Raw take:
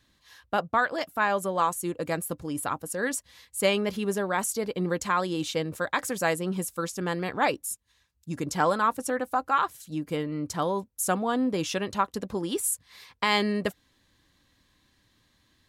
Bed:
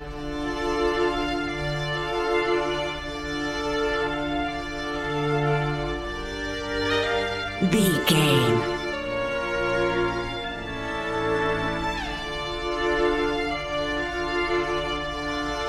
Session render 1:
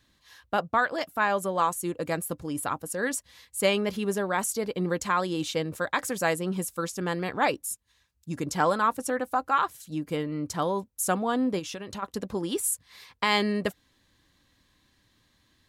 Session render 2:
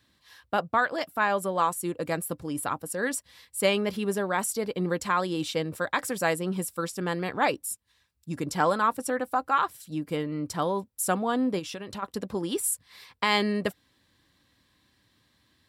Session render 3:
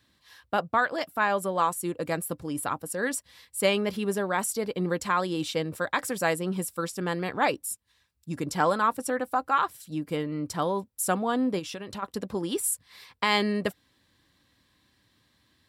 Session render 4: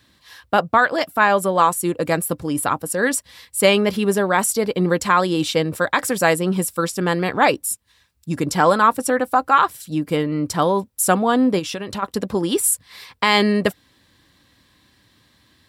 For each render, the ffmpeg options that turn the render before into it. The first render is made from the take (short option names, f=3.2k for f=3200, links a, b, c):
-filter_complex "[0:a]asplit=3[a][b][c];[a]afade=t=out:st=11.58:d=0.02[d];[b]acompressor=threshold=-33dB:ratio=6:attack=3.2:release=140:knee=1:detection=peak,afade=t=in:st=11.58:d=0.02,afade=t=out:st=12.02:d=0.02[e];[c]afade=t=in:st=12.02:d=0.02[f];[d][e][f]amix=inputs=3:normalize=0"
-af "highpass=65,bandreject=f=6.5k:w=8.8"
-af anull
-af "volume=9.5dB,alimiter=limit=-3dB:level=0:latency=1"